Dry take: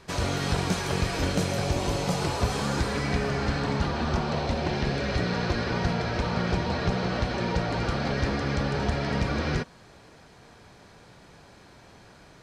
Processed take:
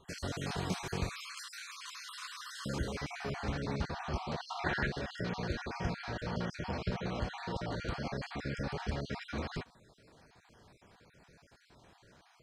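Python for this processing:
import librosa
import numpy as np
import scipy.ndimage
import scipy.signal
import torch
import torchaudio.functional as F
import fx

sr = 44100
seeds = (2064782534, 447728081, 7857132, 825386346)

y = fx.spec_dropout(x, sr, seeds[0], share_pct=36)
y = fx.brickwall_highpass(y, sr, low_hz=1000.0, at=(1.09, 2.66))
y = fx.peak_eq(y, sr, hz=1600.0, db=14.5, octaves=1.2, at=(4.4, 4.87))
y = y * librosa.db_to_amplitude(-8.5)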